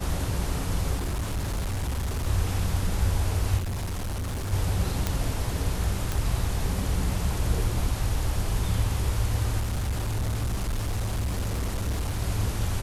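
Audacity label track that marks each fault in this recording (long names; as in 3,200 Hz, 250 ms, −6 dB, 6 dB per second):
0.960000	2.270000	clipping −25 dBFS
3.570000	4.530000	clipping −27.5 dBFS
5.070000	5.070000	click −10 dBFS
6.120000	6.120000	click
9.590000	12.220000	clipping −24 dBFS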